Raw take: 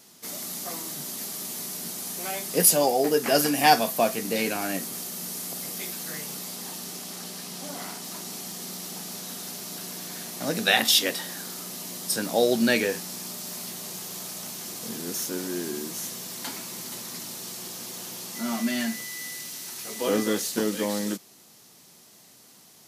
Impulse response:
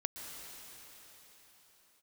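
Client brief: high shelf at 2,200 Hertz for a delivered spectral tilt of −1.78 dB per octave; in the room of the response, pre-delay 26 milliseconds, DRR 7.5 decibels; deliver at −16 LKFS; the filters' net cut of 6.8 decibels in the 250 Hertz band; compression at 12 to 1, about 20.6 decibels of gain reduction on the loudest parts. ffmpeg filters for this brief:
-filter_complex "[0:a]equalizer=frequency=250:width_type=o:gain=-8.5,highshelf=frequency=2200:gain=-3,acompressor=threshold=-35dB:ratio=12,asplit=2[link_01][link_02];[1:a]atrim=start_sample=2205,adelay=26[link_03];[link_02][link_03]afir=irnorm=-1:irlink=0,volume=-8.5dB[link_04];[link_01][link_04]amix=inputs=2:normalize=0,volume=21dB"

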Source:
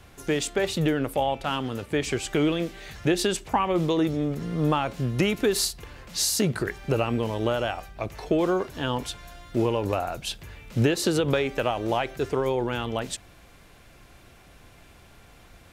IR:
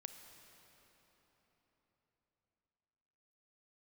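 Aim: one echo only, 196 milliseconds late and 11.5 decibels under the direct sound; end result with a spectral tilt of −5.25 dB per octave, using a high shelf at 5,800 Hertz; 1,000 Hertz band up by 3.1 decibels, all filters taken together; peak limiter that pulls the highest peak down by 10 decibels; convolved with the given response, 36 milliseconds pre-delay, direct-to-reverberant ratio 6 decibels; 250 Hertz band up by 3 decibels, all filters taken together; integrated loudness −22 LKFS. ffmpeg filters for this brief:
-filter_complex "[0:a]equalizer=frequency=250:width_type=o:gain=4,equalizer=frequency=1000:width_type=o:gain=4,highshelf=frequency=5800:gain=-6.5,alimiter=limit=-17dB:level=0:latency=1,aecho=1:1:196:0.266,asplit=2[link_01][link_02];[1:a]atrim=start_sample=2205,adelay=36[link_03];[link_02][link_03]afir=irnorm=-1:irlink=0,volume=-1dB[link_04];[link_01][link_04]amix=inputs=2:normalize=0,volume=5dB"

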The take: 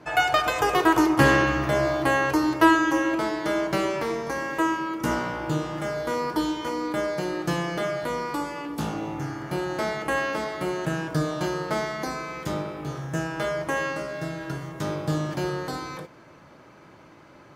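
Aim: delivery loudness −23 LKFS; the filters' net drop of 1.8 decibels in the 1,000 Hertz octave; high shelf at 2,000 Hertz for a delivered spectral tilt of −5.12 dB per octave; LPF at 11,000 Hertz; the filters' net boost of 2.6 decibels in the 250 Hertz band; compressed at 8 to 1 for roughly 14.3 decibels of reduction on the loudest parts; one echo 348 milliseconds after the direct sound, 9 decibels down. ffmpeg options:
ffmpeg -i in.wav -af "lowpass=11000,equalizer=frequency=250:width_type=o:gain=4,equalizer=frequency=1000:width_type=o:gain=-3.5,highshelf=frequency=2000:gain=4,acompressor=threshold=-27dB:ratio=8,aecho=1:1:348:0.355,volume=8dB" out.wav

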